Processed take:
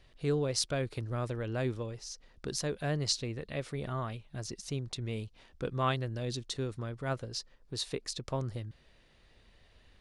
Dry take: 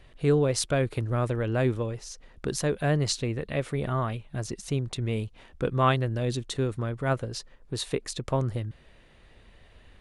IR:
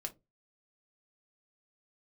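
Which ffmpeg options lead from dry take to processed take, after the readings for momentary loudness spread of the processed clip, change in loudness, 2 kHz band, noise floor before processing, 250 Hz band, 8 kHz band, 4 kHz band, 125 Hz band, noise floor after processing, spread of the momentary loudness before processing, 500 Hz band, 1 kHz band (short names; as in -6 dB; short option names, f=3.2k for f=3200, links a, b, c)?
10 LU, -7.0 dB, -7.0 dB, -56 dBFS, -8.0 dB, -3.5 dB, -1.5 dB, -8.0 dB, -63 dBFS, 12 LU, -8.0 dB, -8.0 dB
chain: -af "equalizer=f=5k:w=1.4:g=8.5,volume=-8dB"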